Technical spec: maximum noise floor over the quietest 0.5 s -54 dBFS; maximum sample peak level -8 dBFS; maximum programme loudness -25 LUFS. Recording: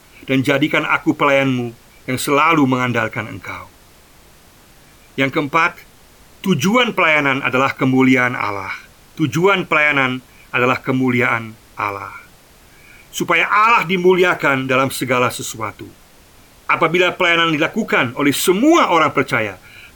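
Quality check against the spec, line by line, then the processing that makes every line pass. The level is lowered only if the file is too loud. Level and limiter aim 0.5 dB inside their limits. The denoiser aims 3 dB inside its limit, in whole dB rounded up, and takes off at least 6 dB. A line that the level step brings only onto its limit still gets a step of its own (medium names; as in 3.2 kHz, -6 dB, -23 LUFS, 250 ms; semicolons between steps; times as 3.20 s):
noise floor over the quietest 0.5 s -47 dBFS: fail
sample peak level -3.5 dBFS: fail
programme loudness -15.5 LUFS: fail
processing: trim -10 dB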